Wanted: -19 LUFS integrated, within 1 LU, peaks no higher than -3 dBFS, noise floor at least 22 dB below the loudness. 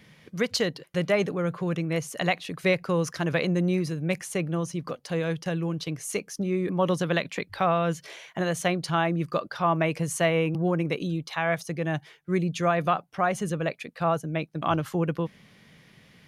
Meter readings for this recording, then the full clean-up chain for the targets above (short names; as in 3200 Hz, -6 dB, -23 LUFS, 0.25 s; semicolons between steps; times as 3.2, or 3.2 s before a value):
loudness -27.5 LUFS; peak -13.0 dBFS; loudness target -19.0 LUFS
-> gain +8.5 dB